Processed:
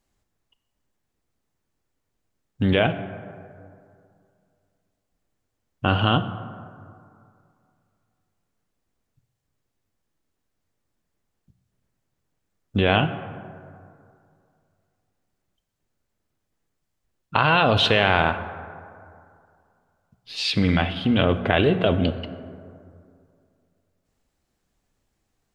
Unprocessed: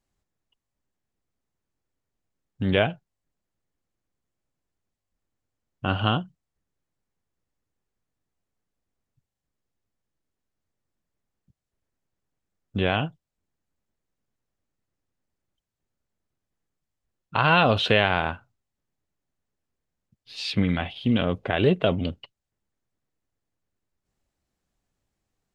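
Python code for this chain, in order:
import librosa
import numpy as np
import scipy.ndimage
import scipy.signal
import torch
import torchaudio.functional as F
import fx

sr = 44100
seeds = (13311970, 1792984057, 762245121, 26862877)

p1 = fx.hum_notches(x, sr, base_hz=60, count=3)
p2 = fx.over_compress(p1, sr, threshold_db=-24.0, ratio=-0.5)
p3 = p1 + F.gain(torch.from_numpy(p2), -1.0).numpy()
p4 = fx.rev_plate(p3, sr, seeds[0], rt60_s=2.4, hf_ratio=0.4, predelay_ms=0, drr_db=10.5)
y = F.gain(torch.from_numpy(p4), -1.0).numpy()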